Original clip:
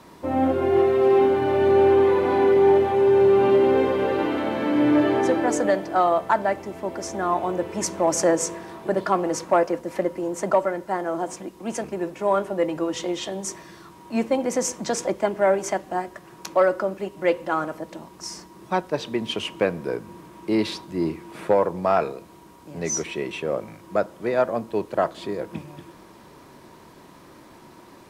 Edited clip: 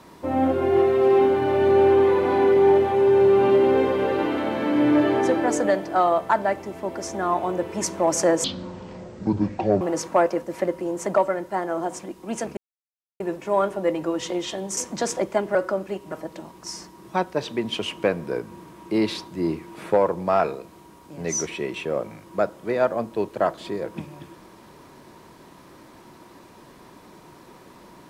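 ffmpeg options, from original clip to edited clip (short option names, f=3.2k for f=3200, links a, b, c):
-filter_complex "[0:a]asplit=7[a][b][c][d][e][f][g];[a]atrim=end=8.444[h];[b]atrim=start=8.44:end=9.18,asetpts=PTS-STARTPTS,asetrate=23814,aresample=44100,atrim=end_sample=60433,asetpts=PTS-STARTPTS[i];[c]atrim=start=9.176:end=11.94,asetpts=PTS-STARTPTS,afade=t=out:st=2.76:d=0.004:c=hsin,apad=pad_dur=0.63[j];[d]atrim=start=11.94:end=13.512,asetpts=PTS-STARTPTS,afade=t=in:d=0.004:c=hsin[k];[e]atrim=start=14.648:end=15.432[l];[f]atrim=start=16.658:end=17.232[m];[g]atrim=start=17.688[n];[h][i]acrossfade=d=0.004:c1=hsin:c2=hsin[o];[j][k]concat=n=2:v=0:a=1[p];[o][p]acrossfade=d=0.004:c1=hsin:c2=hsin[q];[q][l]acrossfade=d=0.004:c1=hsin:c2=hsin[r];[r][m]acrossfade=d=0.004:c1=hsin:c2=hsin[s];[s][n]acrossfade=d=0.004:c1=hsin:c2=hsin"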